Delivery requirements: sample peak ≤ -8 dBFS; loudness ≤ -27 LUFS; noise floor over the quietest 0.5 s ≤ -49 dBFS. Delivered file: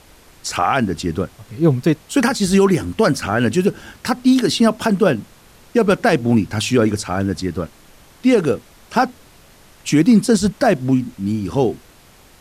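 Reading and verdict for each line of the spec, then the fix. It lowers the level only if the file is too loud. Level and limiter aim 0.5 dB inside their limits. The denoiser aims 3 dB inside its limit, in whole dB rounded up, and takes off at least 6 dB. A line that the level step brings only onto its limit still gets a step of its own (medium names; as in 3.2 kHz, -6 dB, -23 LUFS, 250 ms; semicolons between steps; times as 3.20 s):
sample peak -4.5 dBFS: fail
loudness -17.5 LUFS: fail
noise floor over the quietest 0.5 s -47 dBFS: fail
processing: trim -10 dB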